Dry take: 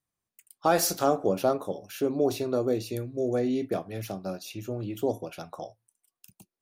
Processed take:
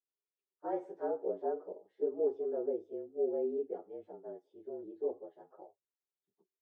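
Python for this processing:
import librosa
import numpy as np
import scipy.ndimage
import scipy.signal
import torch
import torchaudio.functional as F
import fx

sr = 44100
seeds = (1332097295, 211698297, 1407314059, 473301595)

y = fx.partial_stretch(x, sr, pct=111)
y = fx.ladder_bandpass(y, sr, hz=450.0, resonance_pct=65)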